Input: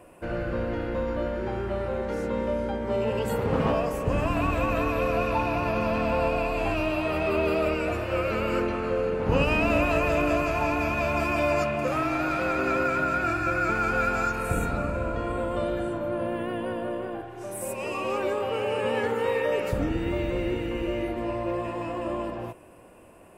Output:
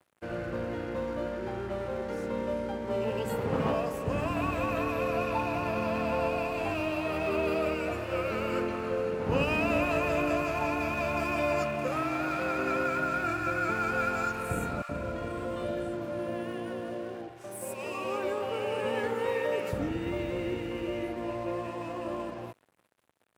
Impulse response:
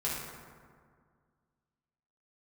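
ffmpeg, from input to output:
-filter_complex "[0:a]aeval=exprs='sgn(val(0))*max(abs(val(0))-0.00473,0)':c=same,highpass=81,asettb=1/sr,asplit=3[s0][s1][s2];[s0]atrim=end=14.824[s3];[s1]atrim=start=14.82:end=17.44,asetpts=PTS-STARTPTS,afade=t=in:d=0.004:c=qsin,afade=t=out:st=2.616:d=0.004:c=qsin,acrossover=split=940[s4][s5];[s4]adelay=70[s6];[s6][s5]amix=inputs=2:normalize=0,atrim=end_sample=115542[s7];[s2]atrim=start=17.436[s8];[s3][s7]acrossfade=d=0.004:c1=hsin:c2=qsin[s9];[s9][s8]acrossfade=d=0.004:c1=qsin:c2=hsin,volume=0.668"

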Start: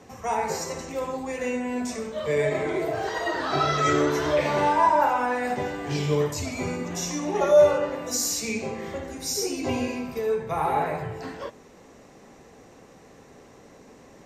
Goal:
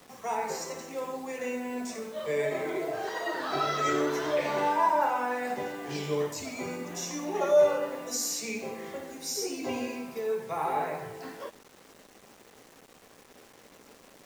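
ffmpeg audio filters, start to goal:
-af "highpass=200,acrusher=bits=7:mix=0:aa=0.000001,volume=0.562"

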